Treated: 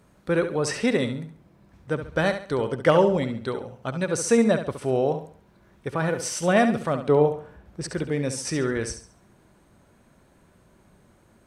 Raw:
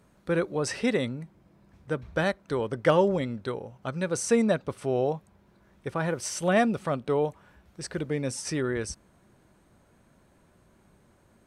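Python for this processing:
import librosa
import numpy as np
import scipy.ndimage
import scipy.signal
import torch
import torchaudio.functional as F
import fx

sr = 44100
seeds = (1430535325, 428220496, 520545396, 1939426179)

y = fx.tilt_shelf(x, sr, db=5.0, hz=1500.0, at=(7.09, 7.84))
y = fx.room_flutter(y, sr, wall_m=11.8, rt60_s=0.44)
y = F.gain(torch.from_numpy(y), 3.0).numpy()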